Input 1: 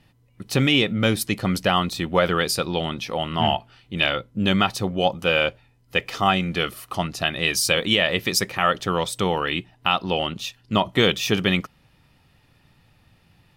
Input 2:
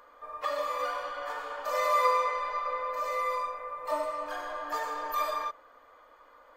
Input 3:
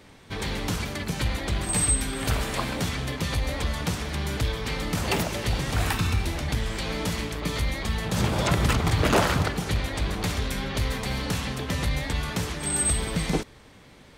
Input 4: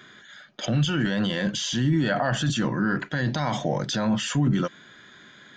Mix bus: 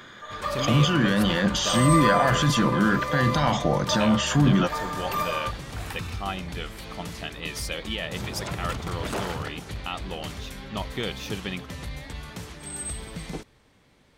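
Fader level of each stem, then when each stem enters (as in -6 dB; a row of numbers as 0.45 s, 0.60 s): -12.5 dB, +2.0 dB, -9.5 dB, +2.5 dB; 0.00 s, 0.00 s, 0.00 s, 0.00 s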